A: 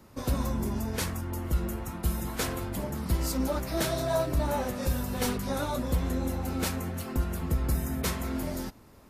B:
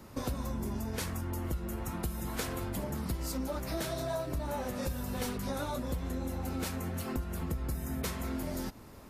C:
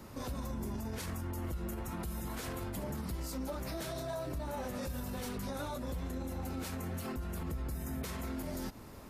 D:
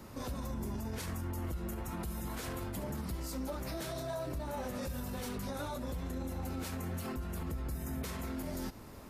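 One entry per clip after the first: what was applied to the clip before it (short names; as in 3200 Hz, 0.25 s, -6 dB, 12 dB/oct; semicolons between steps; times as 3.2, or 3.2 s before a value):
compressor 6:1, threshold -36 dBFS, peak gain reduction 14 dB; gain +3.5 dB
limiter -32 dBFS, peak gain reduction 11 dB; gain +1 dB
flutter echo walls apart 11.9 m, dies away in 0.23 s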